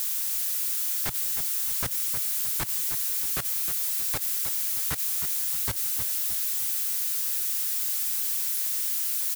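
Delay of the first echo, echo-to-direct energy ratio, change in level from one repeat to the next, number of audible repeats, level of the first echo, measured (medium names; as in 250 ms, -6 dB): 312 ms, -7.5 dB, -7.5 dB, 4, -8.5 dB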